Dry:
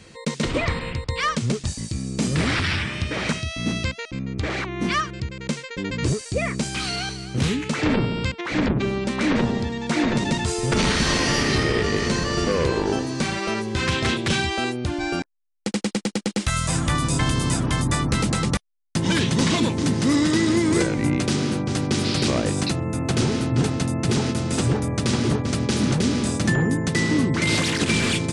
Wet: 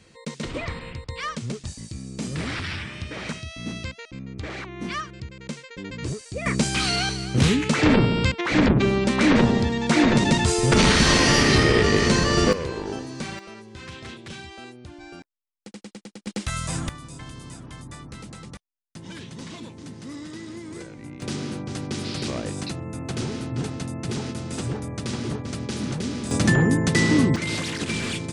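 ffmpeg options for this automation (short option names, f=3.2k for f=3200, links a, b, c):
-af "asetnsamples=n=441:p=0,asendcmd='6.46 volume volume 3.5dB;12.53 volume volume -8dB;13.39 volume volume -16.5dB;16.27 volume volume -5.5dB;16.89 volume volume -18dB;21.22 volume volume -7.5dB;26.31 volume volume 2dB;27.36 volume volume -6.5dB',volume=-7.5dB"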